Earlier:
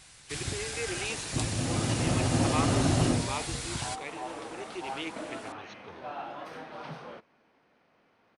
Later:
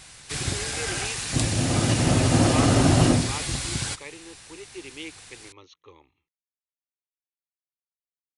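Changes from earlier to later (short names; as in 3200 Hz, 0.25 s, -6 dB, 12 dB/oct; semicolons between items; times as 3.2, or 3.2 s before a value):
first sound +7.0 dB; second sound: muted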